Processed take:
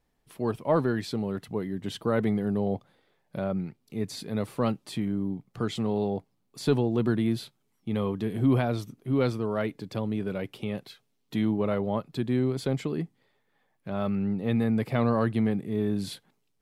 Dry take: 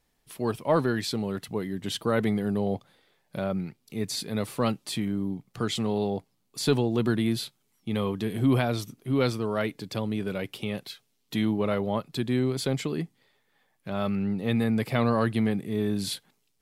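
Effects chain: high shelf 2100 Hz -9 dB

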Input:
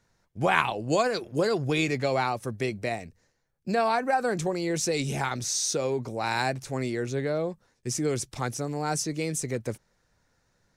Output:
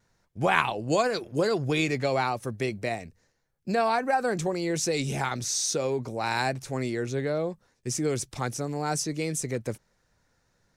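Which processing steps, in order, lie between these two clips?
vibrato 0.53 Hz 12 cents

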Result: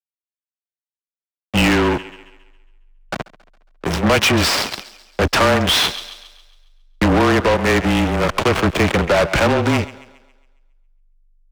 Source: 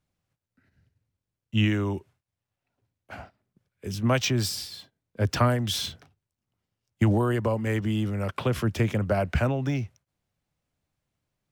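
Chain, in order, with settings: dynamic EQ 2600 Hz, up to +5 dB, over -47 dBFS, Q 1.8; in parallel at +1 dB: compressor 16:1, threshold -36 dBFS, peak gain reduction 20.5 dB; on the sum: backlash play -22 dBFS; on a send: thinning echo 0.137 s, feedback 46%, high-pass 180 Hz, level -23 dB; on the sum: frequency shift -24 Hz; overdrive pedal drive 32 dB, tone 5400 Hz, clips at -6.5 dBFS

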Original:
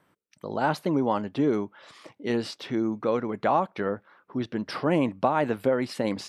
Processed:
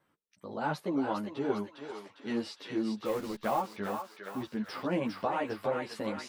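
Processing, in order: 3.05–3.61 level-crossing sampler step -34 dBFS; thinning echo 0.404 s, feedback 62%, high-pass 1000 Hz, level -3.5 dB; ensemble effect; gain -4.5 dB

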